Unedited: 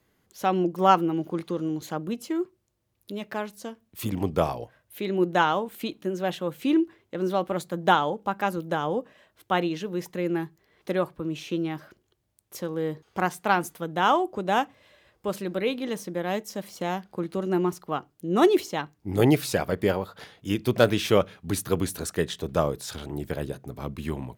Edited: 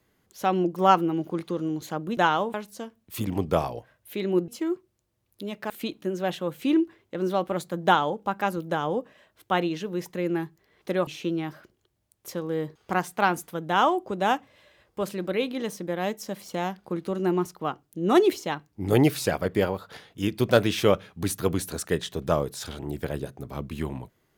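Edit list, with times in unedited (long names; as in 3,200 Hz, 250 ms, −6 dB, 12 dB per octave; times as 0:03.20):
0:02.17–0:03.39: swap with 0:05.33–0:05.70
0:11.07–0:11.34: remove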